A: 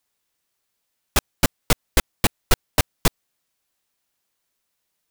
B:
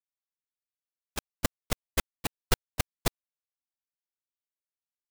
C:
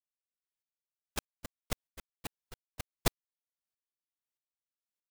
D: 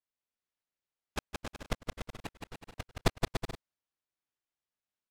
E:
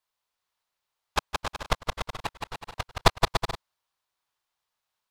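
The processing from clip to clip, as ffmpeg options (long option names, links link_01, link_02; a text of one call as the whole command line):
ffmpeg -i in.wav -af "agate=range=-23dB:threshold=-15dB:ratio=16:detection=peak,volume=-5.5dB" out.wav
ffmpeg -i in.wav -af "aeval=exprs='val(0)*pow(10,-29*if(lt(mod(-1.6*n/s,1),2*abs(-1.6)/1000),1-mod(-1.6*n/s,1)/(2*abs(-1.6)/1000),(mod(-1.6*n/s,1)-2*abs(-1.6)/1000)/(1-2*abs(-1.6)/1000))/20)':channel_layout=same,volume=1.5dB" out.wav
ffmpeg -i in.wav -filter_complex "[0:a]aemphasis=mode=reproduction:type=50fm,asplit=2[link_01][link_02];[link_02]aecho=0:1:170|289|372.3|430.6|471.4:0.631|0.398|0.251|0.158|0.1[link_03];[link_01][link_03]amix=inputs=2:normalize=0,volume=2dB" out.wav
ffmpeg -i in.wav -af "equalizer=frequency=250:width_type=o:width=1:gain=-8,equalizer=frequency=1000:width_type=o:width=1:gain=9,equalizer=frequency=4000:width_type=o:width=1:gain=5,volume=7dB" out.wav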